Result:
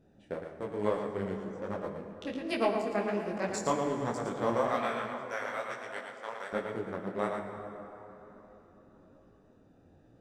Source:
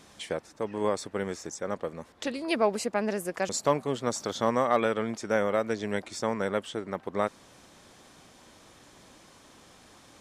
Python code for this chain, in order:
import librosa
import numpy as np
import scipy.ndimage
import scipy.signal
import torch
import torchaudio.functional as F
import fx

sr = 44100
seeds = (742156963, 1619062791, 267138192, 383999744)

y = fx.wiener(x, sr, points=41)
y = fx.highpass(y, sr, hz=910.0, slope=12, at=(4.67, 6.53))
y = y + 10.0 ** (-5.5 / 20.0) * np.pad(y, (int(114 * sr / 1000.0), 0))[:len(y)]
y = fx.rev_plate(y, sr, seeds[0], rt60_s=3.9, hf_ratio=0.5, predelay_ms=0, drr_db=5.0)
y = fx.detune_double(y, sr, cents=41)